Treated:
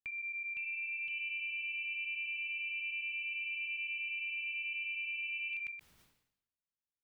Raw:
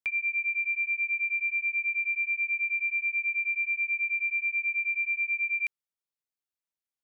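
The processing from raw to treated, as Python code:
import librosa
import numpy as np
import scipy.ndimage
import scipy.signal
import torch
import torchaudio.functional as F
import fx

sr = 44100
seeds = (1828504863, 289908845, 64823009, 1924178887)

p1 = fx.bass_treble(x, sr, bass_db=14, treble_db=-12)
p2 = fx.level_steps(p1, sr, step_db=22)
p3 = fx.high_shelf(p2, sr, hz=2500.0, db=7.0)
p4 = p3 + fx.echo_single(p3, sr, ms=125, db=-16.5, dry=0)
p5 = fx.echo_pitch(p4, sr, ms=517, semitones=2, count=2, db_per_echo=-6.0)
y = fx.sustainer(p5, sr, db_per_s=74.0)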